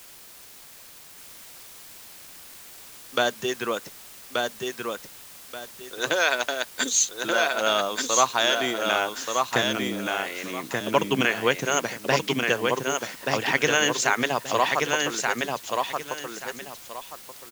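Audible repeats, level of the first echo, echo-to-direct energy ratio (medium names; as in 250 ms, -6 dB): 2, -3.5 dB, -3.0 dB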